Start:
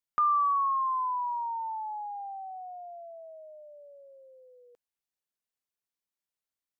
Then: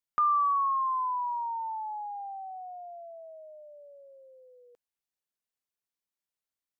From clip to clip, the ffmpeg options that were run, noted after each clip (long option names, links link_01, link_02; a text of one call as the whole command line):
ffmpeg -i in.wav -af anull out.wav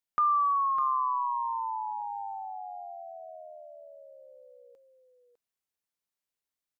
ffmpeg -i in.wav -af "aecho=1:1:604:0.398" out.wav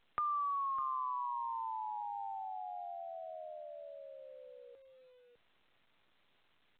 ffmpeg -i in.wav -filter_complex "[0:a]acrossover=split=170[link_01][link_02];[link_02]acompressor=threshold=-43dB:ratio=2[link_03];[link_01][link_03]amix=inputs=2:normalize=0" -ar 8000 -c:a pcm_alaw out.wav